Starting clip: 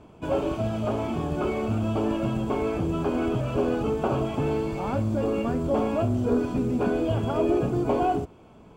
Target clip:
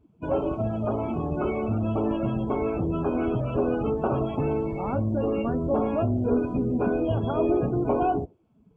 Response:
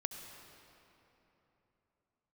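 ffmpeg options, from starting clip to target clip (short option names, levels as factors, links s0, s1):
-af "afftdn=nr=22:nf=-37"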